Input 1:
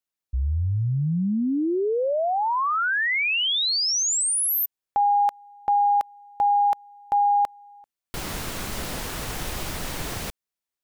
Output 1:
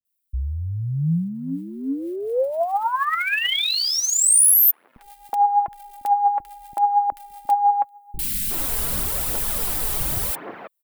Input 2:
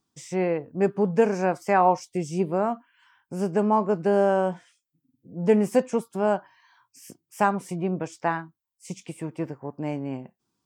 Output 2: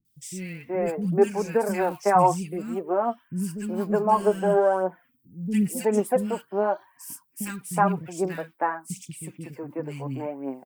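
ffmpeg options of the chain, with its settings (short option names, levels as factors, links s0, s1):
-filter_complex "[0:a]aphaser=in_gain=1:out_gain=1:delay=5:decay=0.51:speed=0.89:type=triangular,aexciter=amount=1.9:drive=9.5:freq=8400,acrossover=split=250|2000[s0][s1][s2];[s2]adelay=50[s3];[s1]adelay=370[s4];[s0][s4][s3]amix=inputs=3:normalize=0"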